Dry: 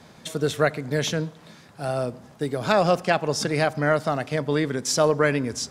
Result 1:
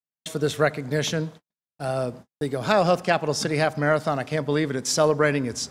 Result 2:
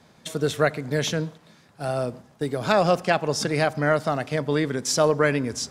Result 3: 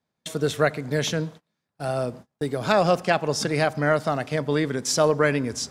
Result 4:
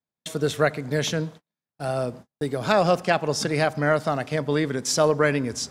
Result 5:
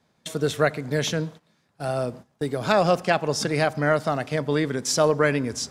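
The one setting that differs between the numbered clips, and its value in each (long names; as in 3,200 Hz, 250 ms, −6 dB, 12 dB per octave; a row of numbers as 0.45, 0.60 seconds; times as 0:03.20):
noise gate, range: −58, −6, −32, −45, −18 decibels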